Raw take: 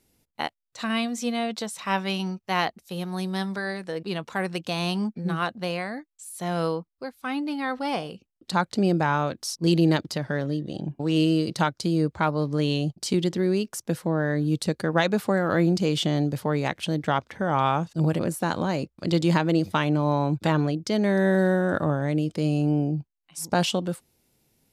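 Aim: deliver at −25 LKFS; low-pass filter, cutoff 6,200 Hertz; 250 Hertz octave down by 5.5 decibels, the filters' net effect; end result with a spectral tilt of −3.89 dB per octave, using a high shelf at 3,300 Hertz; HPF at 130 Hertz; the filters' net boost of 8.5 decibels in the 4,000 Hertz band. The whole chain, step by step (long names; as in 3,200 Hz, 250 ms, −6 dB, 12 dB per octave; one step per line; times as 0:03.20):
high-pass filter 130 Hz
low-pass filter 6,200 Hz
parametric band 250 Hz −8 dB
high-shelf EQ 3,300 Hz +8 dB
parametric band 4,000 Hz +6 dB
level +1 dB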